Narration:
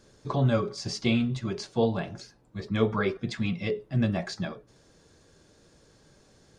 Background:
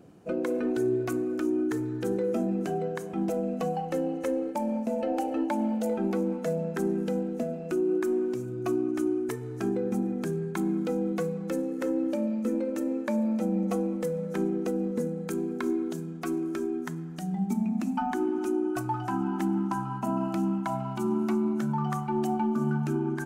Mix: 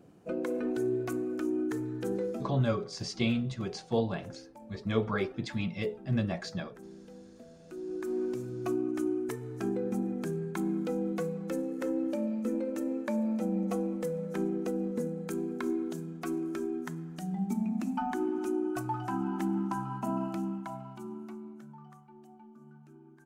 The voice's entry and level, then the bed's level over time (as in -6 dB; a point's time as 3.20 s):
2.15 s, -4.0 dB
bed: 2.22 s -4 dB
2.72 s -21 dB
7.50 s -21 dB
8.24 s -3.5 dB
20.16 s -3.5 dB
22.19 s -26.5 dB